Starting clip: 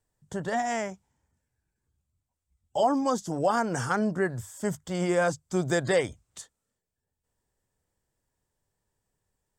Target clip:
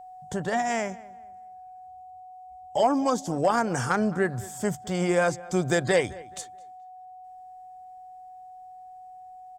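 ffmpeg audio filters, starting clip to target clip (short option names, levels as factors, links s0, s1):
-filter_complex "[0:a]equalizer=f=2400:t=o:w=0.2:g=4.5,asplit=2[s0][s1];[s1]acompressor=threshold=0.0126:ratio=6,volume=0.891[s2];[s0][s2]amix=inputs=2:normalize=0,aeval=exprs='val(0)+0.00794*sin(2*PI*740*n/s)':c=same,aeval=exprs='0.282*(cos(1*acos(clip(val(0)/0.282,-1,1)))-cos(1*PI/2))+0.02*(cos(3*acos(clip(val(0)/0.282,-1,1)))-cos(3*PI/2))':c=same,asplit=2[s3][s4];[s4]adelay=214,lowpass=f=2900:p=1,volume=0.1,asplit=2[s5][s6];[s6]adelay=214,lowpass=f=2900:p=1,volume=0.32,asplit=2[s7][s8];[s8]adelay=214,lowpass=f=2900:p=1,volume=0.32[s9];[s3][s5][s7][s9]amix=inputs=4:normalize=0,volume=1.26"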